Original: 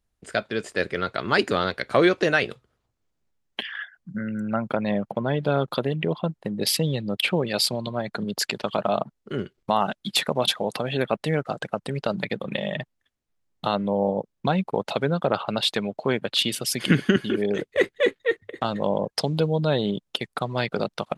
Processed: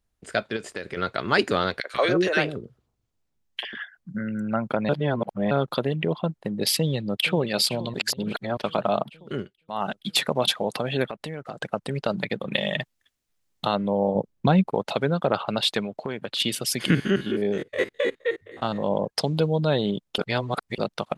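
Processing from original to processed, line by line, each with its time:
0.56–0.97 s: compression 12:1, threshold -27 dBFS
1.80–3.80 s: three bands offset in time highs, mids, lows 40/140 ms, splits 420/1500 Hz
4.89–5.51 s: reverse
6.77–7.38 s: echo throw 470 ms, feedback 65%, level -15.5 dB
7.94–8.57 s: reverse
9.32–9.93 s: dip -17.5 dB, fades 0.24 s
11.05–11.60 s: compression 5:1, threshold -30 dBFS
12.54–13.65 s: treble shelf 2 kHz +9 dB
14.15–14.70 s: bass shelf 380 Hz +7 dB
15.81–16.40 s: compression 4:1, threshold -26 dBFS
16.90–18.92 s: spectrogram pixelated in time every 50 ms
20.18–20.78 s: reverse

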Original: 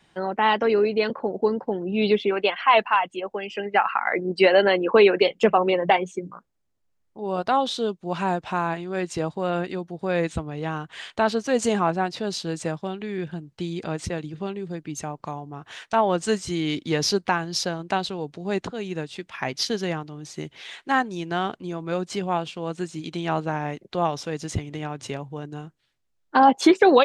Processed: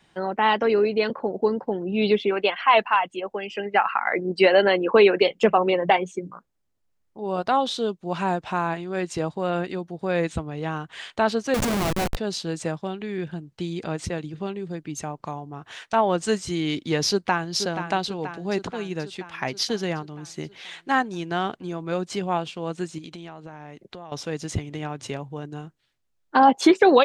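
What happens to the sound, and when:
11.54–12.17 s: Schmitt trigger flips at -26 dBFS
17.07–17.50 s: echo throw 480 ms, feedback 65%, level -9 dB
22.98–24.12 s: compression 12:1, threshold -35 dBFS

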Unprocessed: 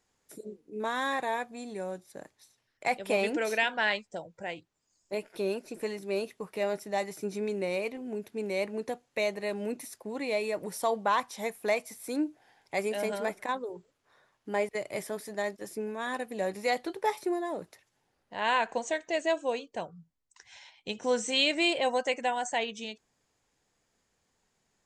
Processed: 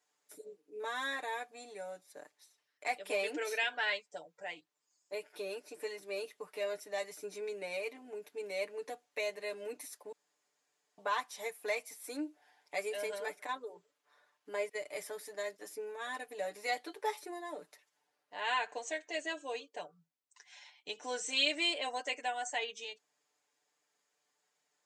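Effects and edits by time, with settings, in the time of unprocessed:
10.12–10.98 s: room tone
whole clip: dynamic bell 900 Hz, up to -4 dB, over -40 dBFS, Q 1.2; Bessel high-pass 520 Hz, order 2; comb 6.8 ms, depth 88%; trim -6 dB

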